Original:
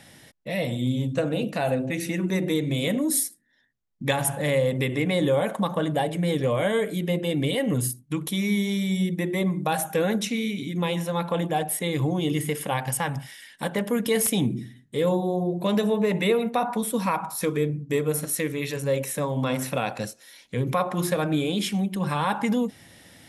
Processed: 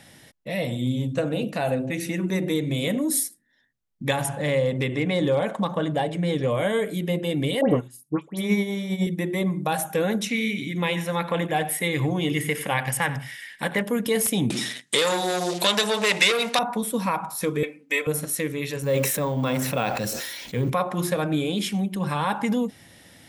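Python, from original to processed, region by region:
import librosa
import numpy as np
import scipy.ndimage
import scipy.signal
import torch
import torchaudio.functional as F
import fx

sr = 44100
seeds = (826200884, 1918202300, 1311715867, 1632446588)

y = fx.chain(x, sr, fx.lowpass(hz=7200.0, slope=12),
    fx.clip_hard(threshold_db=-14.5), at=(4.26, 6.48))
y = fx.chain(y, sr, fx.peak_eq(hz=730.0, db=14.0, octaves=2.3),
    fx.dispersion(late='highs', ms=104.0, hz=2100.0),
    fx.upward_expand(threshold_db=-29.0, expansion=2.5), at=(7.61, 9.07))
y = fx.chain(y, sr, fx.peak_eq(hz=2000.0, db=8.5, octaves=0.93),
    fx.echo_single(ms=90, db=-15.5), at=(10.29, 13.83))
y = fx.chain(y, sr, fx.leveller(passes=2),
    fx.weighting(curve='ITU-R 468'),
    fx.band_squash(depth_pct=70), at=(14.5, 16.59))
y = fx.chain(y, sr, fx.highpass(hz=600.0, slope=12),
    fx.peak_eq(hz=2300.0, db=12.0, octaves=0.82),
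    fx.comb(ms=3.9, depth=0.87), at=(17.63, 18.07))
y = fx.chain(y, sr, fx.law_mismatch(coded='mu'),
    fx.resample_bad(factor=2, down='filtered', up='hold'),
    fx.sustainer(db_per_s=30.0), at=(18.82, 20.7))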